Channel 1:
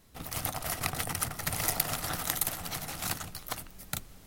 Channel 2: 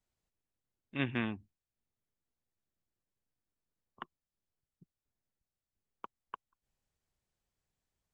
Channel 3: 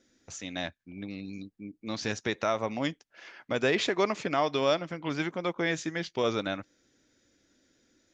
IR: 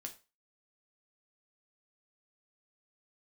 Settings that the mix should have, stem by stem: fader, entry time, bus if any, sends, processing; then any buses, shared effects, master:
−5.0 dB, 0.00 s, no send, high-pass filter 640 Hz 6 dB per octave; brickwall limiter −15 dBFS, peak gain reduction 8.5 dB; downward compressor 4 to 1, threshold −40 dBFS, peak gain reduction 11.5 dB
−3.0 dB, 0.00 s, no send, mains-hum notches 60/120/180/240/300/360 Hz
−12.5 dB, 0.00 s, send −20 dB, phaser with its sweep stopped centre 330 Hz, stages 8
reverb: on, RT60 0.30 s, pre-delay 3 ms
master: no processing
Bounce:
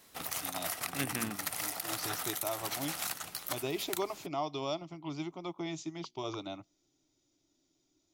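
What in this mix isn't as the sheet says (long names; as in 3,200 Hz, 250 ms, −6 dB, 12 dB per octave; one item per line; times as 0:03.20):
stem 1 −5.0 dB → +5.5 dB
stem 3 −12.5 dB → −6.0 dB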